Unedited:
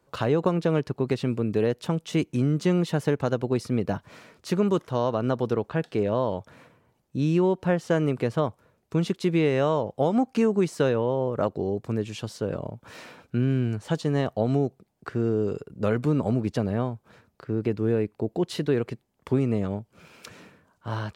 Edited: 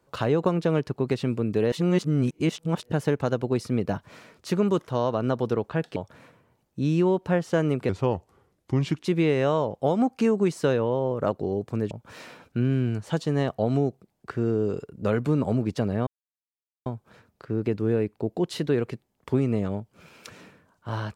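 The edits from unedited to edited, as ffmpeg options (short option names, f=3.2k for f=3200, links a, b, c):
-filter_complex "[0:a]asplit=8[a][b][c][d][e][f][g][h];[a]atrim=end=1.722[i];[b]atrim=start=1.718:end=2.922,asetpts=PTS-STARTPTS,areverse[j];[c]atrim=start=2.918:end=5.962[k];[d]atrim=start=6.328:end=8.264[l];[e]atrim=start=8.26:end=9.21,asetpts=PTS-STARTPTS,asetrate=36162,aresample=44100,atrim=end_sample=51091,asetpts=PTS-STARTPTS[m];[f]atrim=start=9.206:end=12.072[n];[g]atrim=start=12.688:end=16.85,asetpts=PTS-STARTPTS,afade=t=out:st=4.158:d=0.004:c=hsin,apad=pad_dur=0.79[o];[h]atrim=start=16.85,asetpts=PTS-STARTPTS,afade=t=in:d=0.004:c=hsin[p];[i][j]acrossfade=d=0.004:c1=hsin:c2=hsin[q];[q][k]acrossfade=d=0.004:c1=hsin:c2=hsin[r];[r][l]acrossfade=d=0.004:c1=hsin:c2=hsin[s];[s][m]acrossfade=d=0.004:c1=hsin:c2=hsin[t];[t][n]acrossfade=d=0.004:c1=hsin:c2=hsin[u];[o][p]concat=n=2:v=0:a=1[v];[u][v]acrossfade=d=0.004:c1=hsin:c2=hsin"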